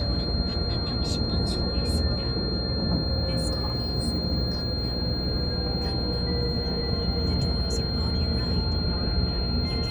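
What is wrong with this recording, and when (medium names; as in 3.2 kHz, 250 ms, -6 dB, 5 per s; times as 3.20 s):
buzz 60 Hz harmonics 14 -32 dBFS
whine 4.2 kHz -31 dBFS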